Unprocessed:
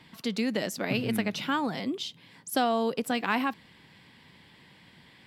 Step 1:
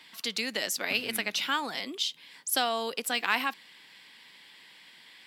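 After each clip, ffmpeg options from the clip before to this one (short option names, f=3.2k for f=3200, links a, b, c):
-af "highpass=270,tiltshelf=f=1.2k:g=-7.5"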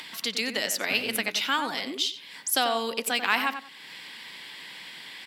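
-filter_complex "[0:a]asplit=2[a][b];[b]acompressor=mode=upward:threshold=-30dB:ratio=2.5,volume=0.5dB[c];[a][c]amix=inputs=2:normalize=0,asplit=2[d][e];[e]adelay=92,lowpass=f=2.2k:p=1,volume=-8dB,asplit=2[f][g];[g]adelay=92,lowpass=f=2.2k:p=1,volume=0.23,asplit=2[h][i];[i]adelay=92,lowpass=f=2.2k:p=1,volume=0.23[j];[d][f][h][j]amix=inputs=4:normalize=0,volume=-3.5dB"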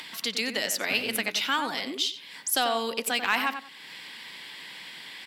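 -af "asoftclip=type=tanh:threshold=-10.5dB"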